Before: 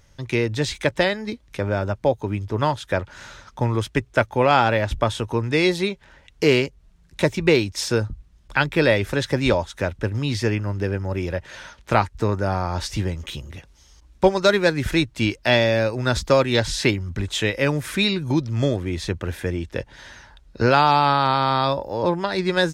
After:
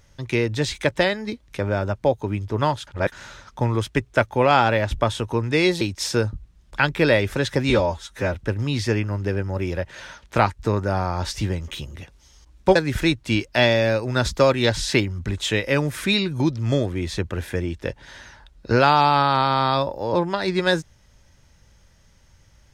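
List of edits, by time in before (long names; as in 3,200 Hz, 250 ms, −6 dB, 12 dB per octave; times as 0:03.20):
0:02.87–0:03.12: reverse
0:05.81–0:07.58: remove
0:09.47–0:09.90: time-stretch 1.5×
0:14.31–0:14.66: remove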